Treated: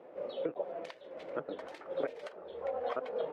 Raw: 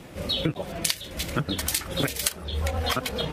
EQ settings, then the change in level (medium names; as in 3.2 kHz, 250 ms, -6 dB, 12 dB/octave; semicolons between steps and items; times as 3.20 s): ladder band-pass 600 Hz, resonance 45%; +4.5 dB